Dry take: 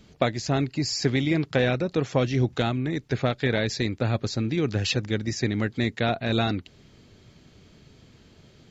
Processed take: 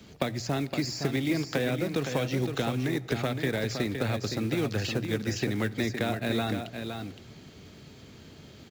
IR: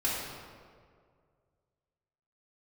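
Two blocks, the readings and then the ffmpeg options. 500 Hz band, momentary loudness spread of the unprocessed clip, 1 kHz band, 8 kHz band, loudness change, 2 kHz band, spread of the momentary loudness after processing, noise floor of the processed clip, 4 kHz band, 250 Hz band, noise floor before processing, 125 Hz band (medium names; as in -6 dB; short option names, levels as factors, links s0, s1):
-4.0 dB, 4 LU, -4.5 dB, no reading, -4.0 dB, -3.5 dB, 21 LU, -51 dBFS, -4.5 dB, -3.0 dB, -56 dBFS, -5.0 dB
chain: -filter_complex "[0:a]highpass=58,bandreject=f=60:t=h:w=6,bandreject=f=120:t=h:w=6,bandreject=f=180:t=h:w=6,acrossover=split=360|1600[s0][s1][s2];[s0]acompressor=threshold=0.0178:ratio=4[s3];[s1]acompressor=threshold=0.0141:ratio=4[s4];[s2]acompressor=threshold=0.00794:ratio=4[s5];[s3][s4][s5]amix=inputs=3:normalize=0,acrossover=split=190[s6][s7];[s7]acrusher=bits=4:mode=log:mix=0:aa=0.000001[s8];[s6][s8]amix=inputs=2:normalize=0,aecho=1:1:515:0.447,asplit=2[s9][s10];[1:a]atrim=start_sample=2205[s11];[s10][s11]afir=irnorm=-1:irlink=0,volume=0.0501[s12];[s9][s12]amix=inputs=2:normalize=0,volume=1.5"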